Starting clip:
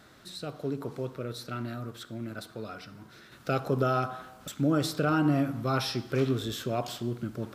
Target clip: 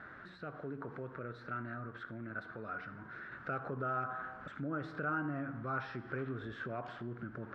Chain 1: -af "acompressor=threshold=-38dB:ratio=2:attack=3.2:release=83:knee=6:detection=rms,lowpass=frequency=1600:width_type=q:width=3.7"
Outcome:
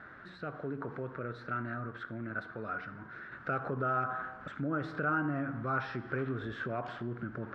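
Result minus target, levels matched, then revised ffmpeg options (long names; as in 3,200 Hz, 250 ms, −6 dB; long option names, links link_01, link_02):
downward compressor: peak gain reduction −5 dB
-af "acompressor=threshold=-47.5dB:ratio=2:attack=3.2:release=83:knee=6:detection=rms,lowpass=frequency=1600:width_type=q:width=3.7"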